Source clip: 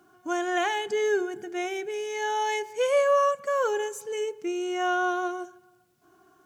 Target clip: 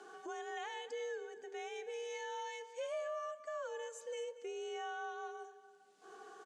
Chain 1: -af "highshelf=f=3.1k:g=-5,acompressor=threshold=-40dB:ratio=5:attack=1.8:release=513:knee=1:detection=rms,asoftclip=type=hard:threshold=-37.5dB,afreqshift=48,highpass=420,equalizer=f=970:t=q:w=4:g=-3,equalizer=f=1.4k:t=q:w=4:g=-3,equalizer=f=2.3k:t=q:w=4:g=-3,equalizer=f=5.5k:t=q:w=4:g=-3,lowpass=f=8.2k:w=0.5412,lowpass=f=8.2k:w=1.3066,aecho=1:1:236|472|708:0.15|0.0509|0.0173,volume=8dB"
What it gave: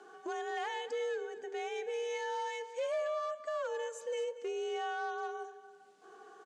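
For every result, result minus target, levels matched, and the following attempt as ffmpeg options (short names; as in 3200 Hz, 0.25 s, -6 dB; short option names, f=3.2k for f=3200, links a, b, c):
compressor: peak gain reduction -6.5 dB; 8000 Hz band -4.0 dB
-af "highshelf=f=3.1k:g=-5,acompressor=threshold=-48dB:ratio=5:attack=1.8:release=513:knee=1:detection=rms,asoftclip=type=hard:threshold=-37.5dB,afreqshift=48,highpass=420,equalizer=f=970:t=q:w=4:g=-3,equalizer=f=1.4k:t=q:w=4:g=-3,equalizer=f=2.3k:t=q:w=4:g=-3,equalizer=f=5.5k:t=q:w=4:g=-3,lowpass=f=8.2k:w=0.5412,lowpass=f=8.2k:w=1.3066,aecho=1:1:236|472|708:0.15|0.0509|0.0173,volume=8dB"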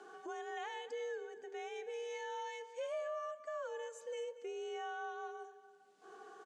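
8000 Hz band -3.5 dB
-af "acompressor=threshold=-48dB:ratio=5:attack=1.8:release=513:knee=1:detection=rms,asoftclip=type=hard:threshold=-37.5dB,afreqshift=48,highpass=420,equalizer=f=970:t=q:w=4:g=-3,equalizer=f=1.4k:t=q:w=4:g=-3,equalizer=f=2.3k:t=q:w=4:g=-3,equalizer=f=5.5k:t=q:w=4:g=-3,lowpass=f=8.2k:w=0.5412,lowpass=f=8.2k:w=1.3066,aecho=1:1:236|472|708:0.15|0.0509|0.0173,volume=8dB"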